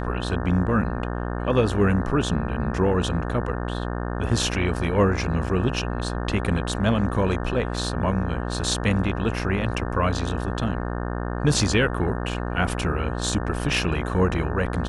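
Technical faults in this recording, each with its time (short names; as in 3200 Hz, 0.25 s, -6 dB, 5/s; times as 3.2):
buzz 60 Hz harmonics 30 -28 dBFS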